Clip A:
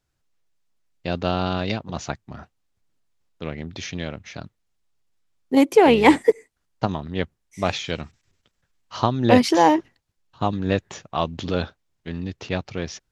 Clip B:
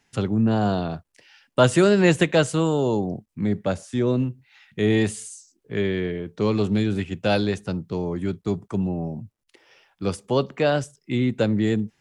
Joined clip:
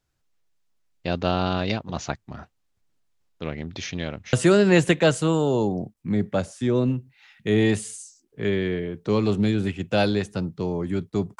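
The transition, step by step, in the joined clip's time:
clip A
0:04.33: continue with clip B from 0:01.65

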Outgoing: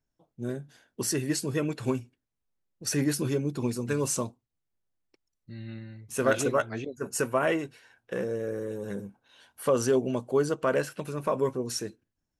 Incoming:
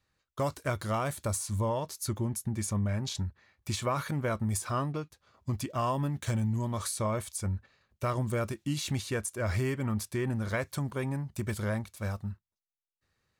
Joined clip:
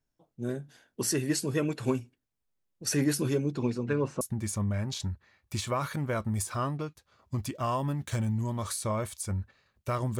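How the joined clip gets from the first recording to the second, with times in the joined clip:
outgoing
0:03.45–0:04.21: low-pass filter 7,500 Hz → 1,400 Hz
0:04.21: continue with incoming from 0:02.36

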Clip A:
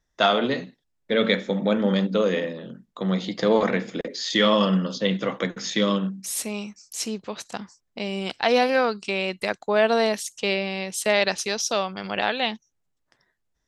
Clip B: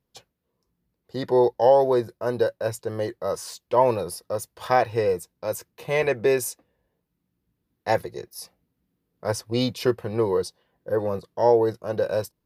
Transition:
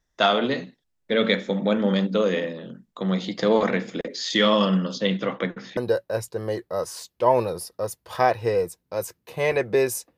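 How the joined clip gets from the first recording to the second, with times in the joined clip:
clip A
0:05.14–0:05.77: low-pass filter 6,200 Hz → 1,600 Hz
0:05.77: continue with clip B from 0:02.28

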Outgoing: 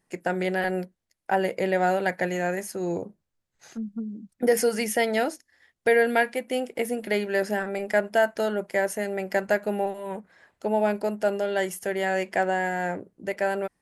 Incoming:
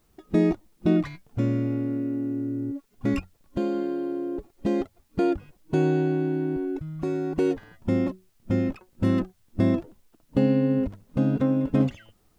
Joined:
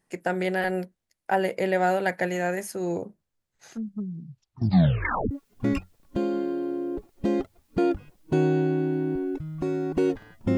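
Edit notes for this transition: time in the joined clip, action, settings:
outgoing
0:03.88: tape stop 1.43 s
0:05.31: continue with incoming from 0:02.72

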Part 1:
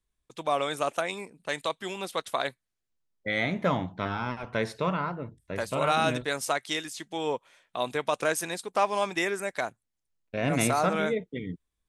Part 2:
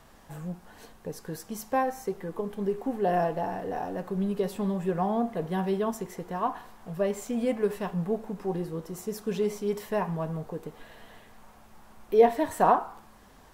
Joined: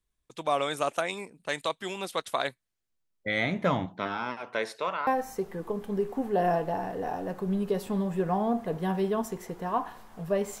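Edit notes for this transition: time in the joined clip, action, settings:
part 1
0:03.85–0:05.07: high-pass filter 160 Hz → 660 Hz
0:05.07: continue with part 2 from 0:01.76

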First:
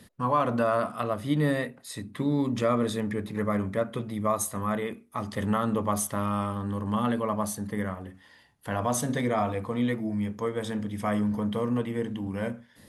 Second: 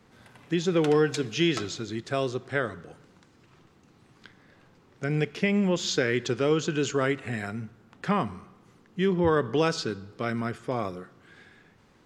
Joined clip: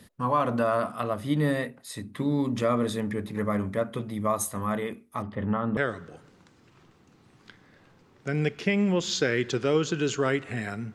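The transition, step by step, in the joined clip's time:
first
0:05.22–0:05.77: high-frequency loss of the air 500 metres
0:05.77: continue with second from 0:02.53

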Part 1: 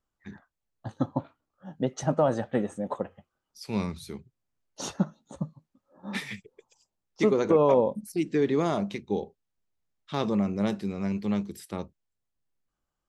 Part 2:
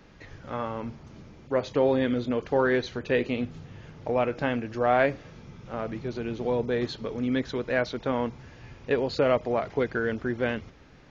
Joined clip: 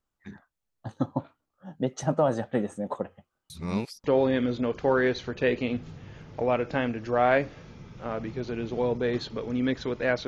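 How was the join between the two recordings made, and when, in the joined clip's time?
part 1
0:03.50–0:04.04: reverse
0:04.04: continue with part 2 from 0:01.72

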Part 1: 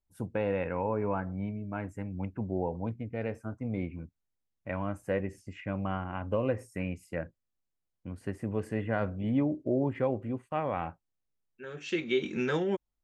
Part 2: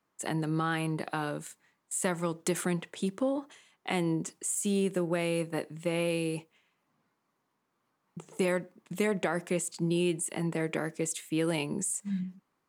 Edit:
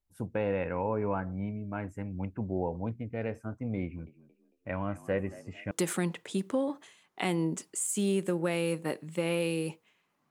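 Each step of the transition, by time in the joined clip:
part 1
0:03.84–0:05.71: echo with shifted repeats 225 ms, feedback 34%, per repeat +61 Hz, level −18.5 dB
0:05.71: continue with part 2 from 0:02.39

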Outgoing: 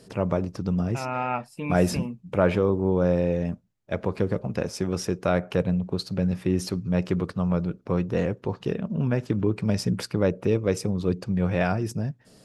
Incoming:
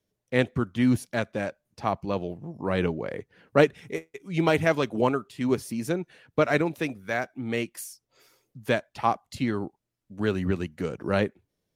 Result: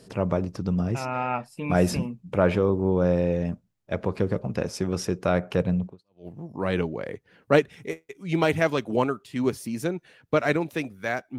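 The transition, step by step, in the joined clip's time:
outgoing
0:06.07: continue with incoming from 0:02.12, crossfade 0.42 s exponential

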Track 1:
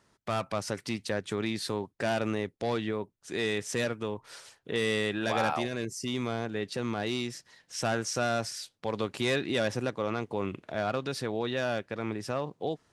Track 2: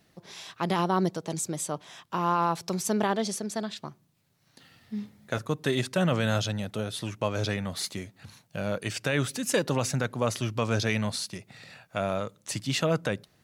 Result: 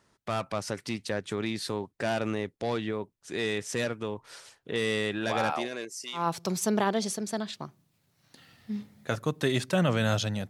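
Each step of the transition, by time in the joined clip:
track 1
0:05.51–0:06.28: high-pass filter 180 Hz → 1,200 Hz
0:06.20: continue with track 2 from 0:02.43, crossfade 0.16 s

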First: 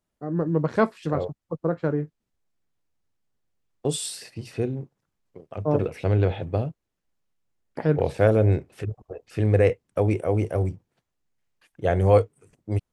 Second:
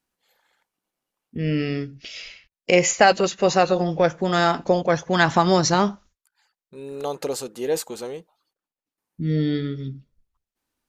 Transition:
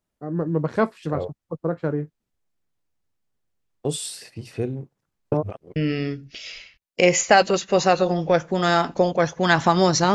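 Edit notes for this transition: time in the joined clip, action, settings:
first
0:05.32–0:05.76: reverse
0:05.76: continue with second from 0:01.46

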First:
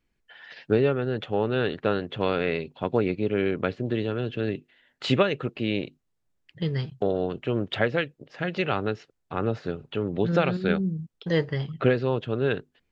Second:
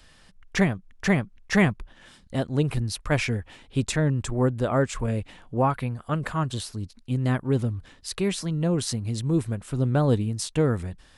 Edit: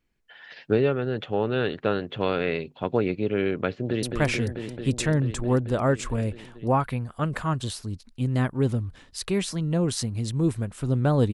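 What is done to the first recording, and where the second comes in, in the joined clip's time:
first
0:03.67–0:04.03: delay throw 220 ms, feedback 85%, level −5 dB
0:04.03: continue with second from 0:02.93

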